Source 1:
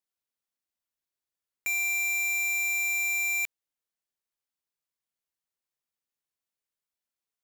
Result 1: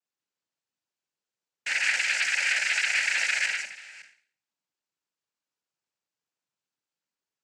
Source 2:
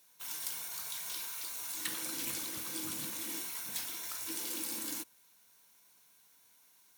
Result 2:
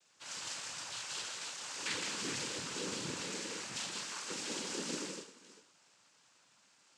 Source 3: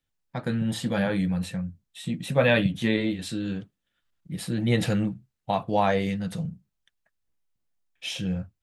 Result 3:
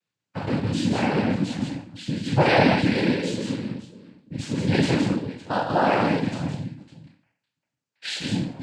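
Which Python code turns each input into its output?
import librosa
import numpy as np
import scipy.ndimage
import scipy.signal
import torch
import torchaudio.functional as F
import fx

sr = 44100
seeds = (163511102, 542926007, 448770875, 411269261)

y = fx.spec_trails(x, sr, decay_s=0.47)
y = fx.high_shelf(y, sr, hz=5400.0, db=-3.5)
y = fx.wow_flutter(y, sr, seeds[0], rate_hz=2.1, depth_cents=36.0)
y = fx.echo_multitap(y, sr, ms=(45, 164, 195, 561), db=(-4.0, -5.5, -6.5, -17.0))
y = fx.noise_vocoder(y, sr, seeds[1], bands=8)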